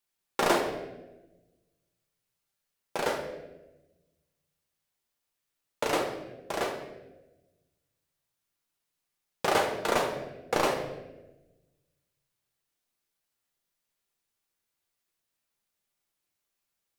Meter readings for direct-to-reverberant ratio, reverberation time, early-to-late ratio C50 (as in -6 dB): 1.5 dB, 1.1 s, 6.0 dB